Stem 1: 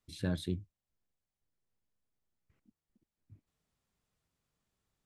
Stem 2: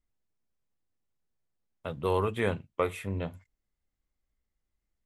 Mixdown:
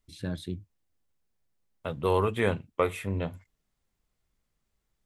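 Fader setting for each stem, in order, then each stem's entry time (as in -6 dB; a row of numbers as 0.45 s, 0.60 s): 0.0 dB, +2.5 dB; 0.00 s, 0.00 s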